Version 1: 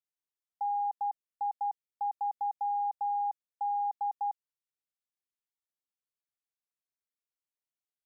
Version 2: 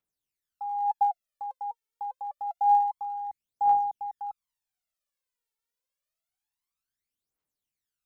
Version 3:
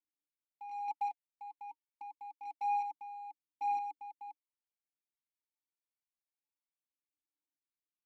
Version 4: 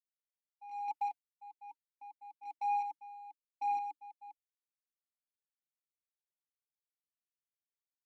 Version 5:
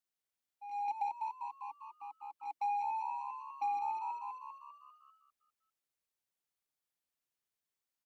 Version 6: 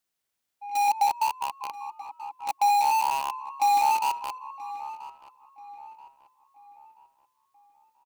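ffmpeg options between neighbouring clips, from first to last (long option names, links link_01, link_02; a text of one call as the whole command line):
ffmpeg -i in.wav -af "aphaser=in_gain=1:out_gain=1:delay=2.3:decay=0.74:speed=0.27:type=triangular,volume=1.5dB" out.wav
ffmpeg -i in.wav -filter_complex "[0:a]acrusher=bits=2:mode=log:mix=0:aa=0.000001,asplit=3[link_01][link_02][link_03];[link_01]bandpass=frequency=300:width_type=q:width=8,volume=0dB[link_04];[link_02]bandpass=frequency=870:width_type=q:width=8,volume=-6dB[link_05];[link_03]bandpass=frequency=2240:width_type=q:width=8,volume=-9dB[link_06];[link_04][link_05][link_06]amix=inputs=3:normalize=0,volume=-2dB" out.wav
ffmpeg -i in.wav -af "agate=range=-33dB:threshold=-42dB:ratio=3:detection=peak" out.wav
ffmpeg -i in.wav -filter_complex "[0:a]asplit=2[link_01][link_02];[link_02]asplit=7[link_03][link_04][link_05][link_06][link_07][link_08][link_09];[link_03]adelay=198,afreqshift=69,volume=-6.5dB[link_10];[link_04]adelay=396,afreqshift=138,volume=-11.7dB[link_11];[link_05]adelay=594,afreqshift=207,volume=-16.9dB[link_12];[link_06]adelay=792,afreqshift=276,volume=-22.1dB[link_13];[link_07]adelay=990,afreqshift=345,volume=-27.3dB[link_14];[link_08]adelay=1188,afreqshift=414,volume=-32.5dB[link_15];[link_09]adelay=1386,afreqshift=483,volume=-37.7dB[link_16];[link_10][link_11][link_12][link_13][link_14][link_15][link_16]amix=inputs=7:normalize=0[link_17];[link_01][link_17]amix=inputs=2:normalize=0,acompressor=threshold=-35dB:ratio=6,volume=3dB" out.wav
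ffmpeg -i in.wav -filter_complex "[0:a]asplit=2[link_01][link_02];[link_02]acrusher=bits=5:mix=0:aa=0.000001,volume=-3.5dB[link_03];[link_01][link_03]amix=inputs=2:normalize=0,asplit=2[link_04][link_05];[link_05]adelay=982,lowpass=frequency=2400:poles=1,volume=-16dB,asplit=2[link_06][link_07];[link_07]adelay=982,lowpass=frequency=2400:poles=1,volume=0.44,asplit=2[link_08][link_09];[link_09]adelay=982,lowpass=frequency=2400:poles=1,volume=0.44,asplit=2[link_10][link_11];[link_11]adelay=982,lowpass=frequency=2400:poles=1,volume=0.44[link_12];[link_04][link_06][link_08][link_10][link_12]amix=inputs=5:normalize=0,volume=8.5dB" out.wav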